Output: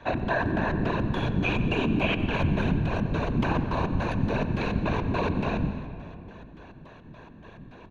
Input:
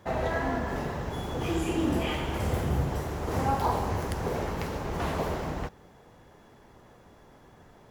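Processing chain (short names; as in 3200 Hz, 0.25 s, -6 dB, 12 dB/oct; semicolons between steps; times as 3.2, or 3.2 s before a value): ripple EQ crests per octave 1.5, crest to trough 15 dB; limiter -22 dBFS, peak gain reduction 9 dB; LFO low-pass square 3.5 Hz 200–3100 Hz; whisperiser; speakerphone echo 90 ms, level -14 dB; on a send at -10 dB: reverb RT60 2.6 s, pre-delay 0.115 s; on the sum: gain +3.5 dB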